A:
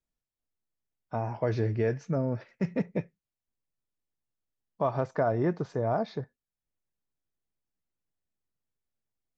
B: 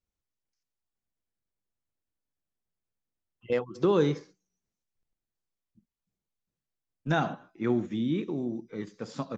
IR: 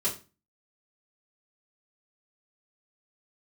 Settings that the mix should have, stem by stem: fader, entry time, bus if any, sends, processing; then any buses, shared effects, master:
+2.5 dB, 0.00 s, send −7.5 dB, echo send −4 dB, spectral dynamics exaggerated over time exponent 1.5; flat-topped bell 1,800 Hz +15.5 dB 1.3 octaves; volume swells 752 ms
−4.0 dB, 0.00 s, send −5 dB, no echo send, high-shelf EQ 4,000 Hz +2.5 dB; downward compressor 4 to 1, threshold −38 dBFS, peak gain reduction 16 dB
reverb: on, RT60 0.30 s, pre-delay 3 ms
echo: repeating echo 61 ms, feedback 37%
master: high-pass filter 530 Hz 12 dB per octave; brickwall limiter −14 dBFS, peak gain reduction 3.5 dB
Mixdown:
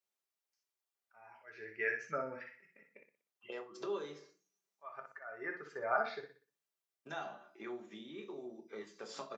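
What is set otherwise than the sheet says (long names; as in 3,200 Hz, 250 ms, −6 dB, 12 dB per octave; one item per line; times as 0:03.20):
stem A +2.5 dB → −5.5 dB
stem B: missing high-shelf EQ 4,000 Hz +2.5 dB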